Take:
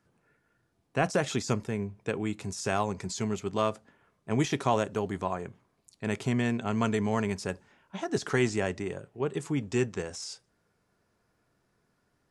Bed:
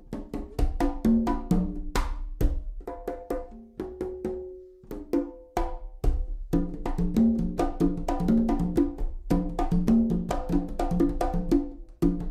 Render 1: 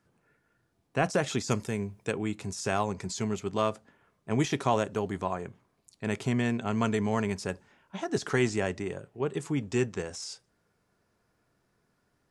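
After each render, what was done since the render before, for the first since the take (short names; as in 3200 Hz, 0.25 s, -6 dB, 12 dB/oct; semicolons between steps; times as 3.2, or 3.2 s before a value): 1.5–2.12 high shelf 3600 Hz -> 5700 Hz +11 dB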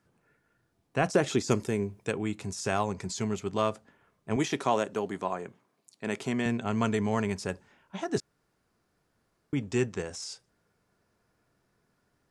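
1.15–2 bell 350 Hz +7 dB; 4.36–6.46 HPF 190 Hz; 8.2–9.53 room tone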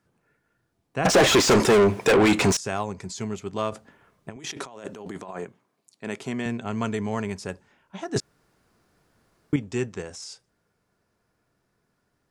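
1.05–2.57 overdrive pedal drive 39 dB, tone 2700 Hz, clips at -8.5 dBFS; 3.72–5.45 negative-ratio compressor -38 dBFS; 8.16–9.56 gain +8.5 dB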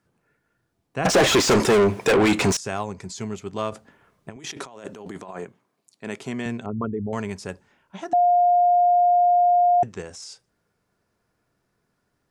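6.66–7.13 formant sharpening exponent 3; 8.13–9.83 bleep 708 Hz -14 dBFS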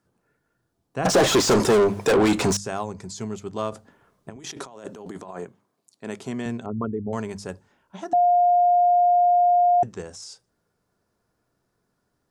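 bell 2300 Hz -6 dB 0.98 oct; notches 50/100/150/200 Hz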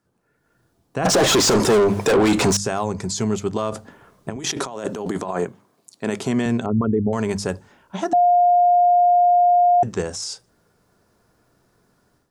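AGC gain up to 11.5 dB; limiter -11.5 dBFS, peak gain reduction 9.5 dB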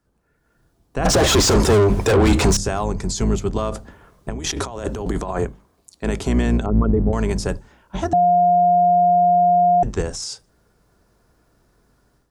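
octaver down 2 oct, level +2 dB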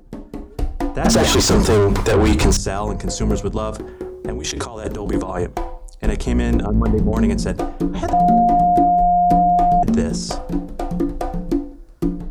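add bed +3 dB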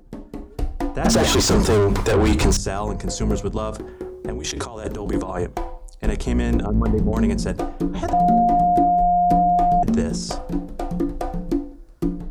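gain -2.5 dB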